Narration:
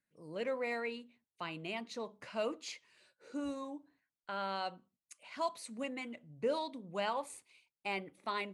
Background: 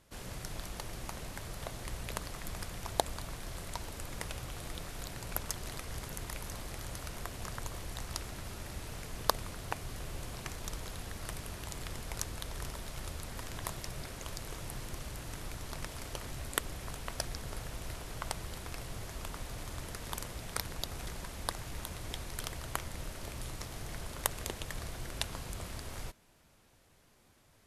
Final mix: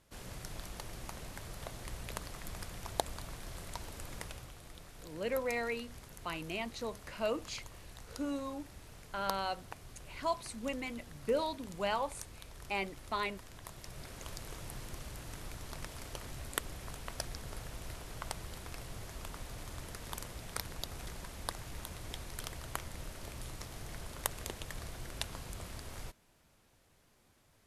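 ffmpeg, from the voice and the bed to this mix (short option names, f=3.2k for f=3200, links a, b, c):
-filter_complex "[0:a]adelay=4850,volume=2dB[a];[1:a]volume=4dB,afade=t=out:st=4.14:d=0.44:silence=0.446684,afade=t=in:st=13.67:d=0.56:silence=0.446684[b];[a][b]amix=inputs=2:normalize=0"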